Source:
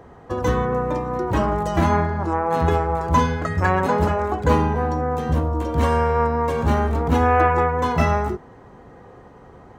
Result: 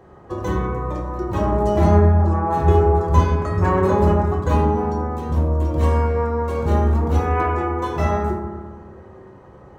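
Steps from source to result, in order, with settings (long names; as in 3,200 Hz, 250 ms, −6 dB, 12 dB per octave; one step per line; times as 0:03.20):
0:01.52–0:04.04: low-shelf EQ 240 Hz +7 dB
convolution reverb RT60 1.5 s, pre-delay 3 ms, DRR −3 dB
dynamic equaliser 1,800 Hz, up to −4 dB, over −32 dBFS, Q 1.1
level −5.5 dB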